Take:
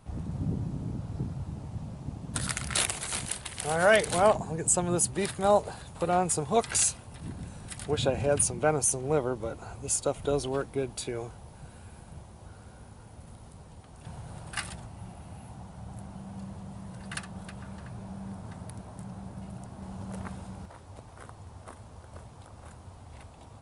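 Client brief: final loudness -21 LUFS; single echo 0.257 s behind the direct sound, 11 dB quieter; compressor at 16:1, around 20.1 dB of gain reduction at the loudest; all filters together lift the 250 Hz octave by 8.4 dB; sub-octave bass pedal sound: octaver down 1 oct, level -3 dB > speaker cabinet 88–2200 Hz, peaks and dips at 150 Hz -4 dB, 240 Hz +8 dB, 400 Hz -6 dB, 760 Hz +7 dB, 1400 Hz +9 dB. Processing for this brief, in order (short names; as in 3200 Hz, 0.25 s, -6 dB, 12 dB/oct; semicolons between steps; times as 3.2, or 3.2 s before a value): bell 250 Hz +8 dB; compressor 16:1, threshold -36 dBFS; echo 0.257 s -11 dB; octaver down 1 oct, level -3 dB; speaker cabinet 88–2200 Hz, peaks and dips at 150 Hz -4 dB, 240 Hz +8 dB, 400 Hz -6 dB, 760 Hz +7 dB, 1400 Hz +9 dB; gain +19.5 dB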